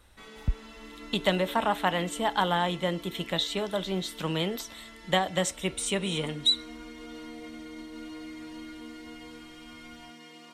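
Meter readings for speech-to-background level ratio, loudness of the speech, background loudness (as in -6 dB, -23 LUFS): 16.0 dB, -29.0 LUFS, -45.0 LUFS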